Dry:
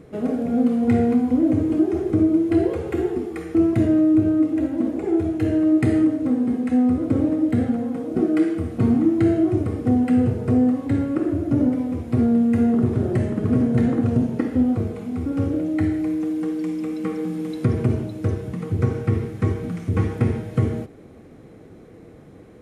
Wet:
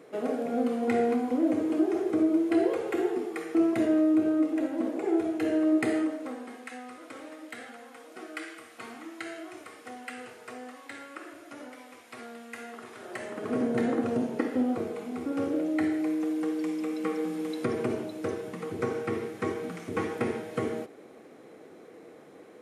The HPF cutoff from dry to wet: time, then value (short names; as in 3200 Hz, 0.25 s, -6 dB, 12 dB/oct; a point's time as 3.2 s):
5.8 s 440 Hz
6.81 s 1400 Hz
12.98 s 1400 Hz
13.64 s 390 Hz